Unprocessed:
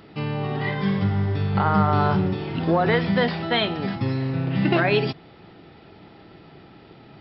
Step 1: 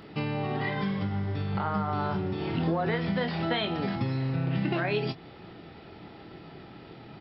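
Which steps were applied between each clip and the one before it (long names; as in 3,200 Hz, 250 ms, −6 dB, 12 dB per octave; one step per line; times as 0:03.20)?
downward compressor, threshold −26 dBFS, peak gain reduction 11.5 dB
double-tracking delay 24 ms −10 dB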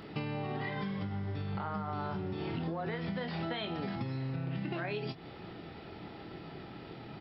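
downward compressor 5 to 1, threshold −34 dBFS, peak gain reduction 10.5 dB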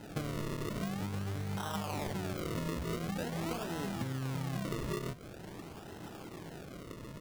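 variable-slope delta modulation 16 kbit/s
sample-and-hold swept by an LFO 38×, swing 100% 0.46 Hz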